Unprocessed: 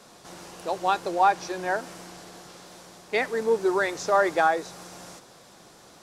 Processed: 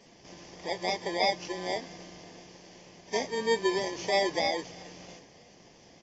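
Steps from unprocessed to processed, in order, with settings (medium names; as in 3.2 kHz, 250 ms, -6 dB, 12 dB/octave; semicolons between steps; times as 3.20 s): bit-reversed sample order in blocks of 32 samples; frequency-shifting echo 326 ms, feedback 51%, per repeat -32 Hz, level -24 dB; trim -2.5 dB; AAC 24 kbps 16 kHz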